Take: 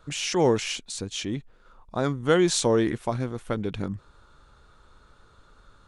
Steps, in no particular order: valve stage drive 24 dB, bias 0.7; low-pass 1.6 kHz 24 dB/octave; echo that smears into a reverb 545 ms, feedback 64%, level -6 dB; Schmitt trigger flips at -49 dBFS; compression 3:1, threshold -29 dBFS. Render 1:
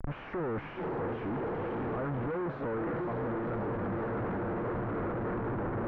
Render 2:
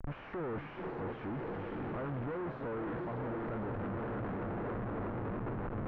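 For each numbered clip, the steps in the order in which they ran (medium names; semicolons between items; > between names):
echo that smears into a reverb > Schmitt trigger > compression > valve stage > low-pass; compression > echo that smears into a reverb > Schmitt trigger > low-pass > valve stage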